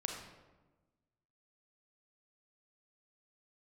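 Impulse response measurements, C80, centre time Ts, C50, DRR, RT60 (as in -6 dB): 5.5 dB, 43 ms, 3.5 dB, 1.5 dB, 1.2 s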